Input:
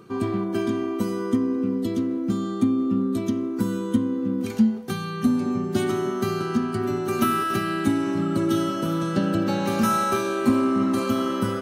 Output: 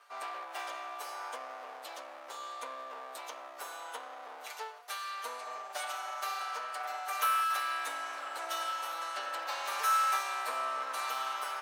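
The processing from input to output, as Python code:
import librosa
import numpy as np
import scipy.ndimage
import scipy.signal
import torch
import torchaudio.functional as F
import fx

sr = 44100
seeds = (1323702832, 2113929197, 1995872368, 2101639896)

y = fx.lower_of_two(x, sr, delay_ms=6.8)
y = scipy.signal.sosfilt(scipy.signal.butter(4, 800.0, 'highpass', fs=sr, output='sos'), y)
y = y * 10.0 ** (-4.0 / 20.0)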